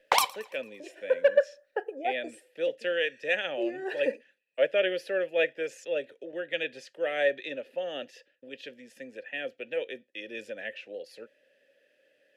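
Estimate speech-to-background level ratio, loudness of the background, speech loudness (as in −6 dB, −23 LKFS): −4.0 dB, −27.0 LKFS, −31.0 LKFS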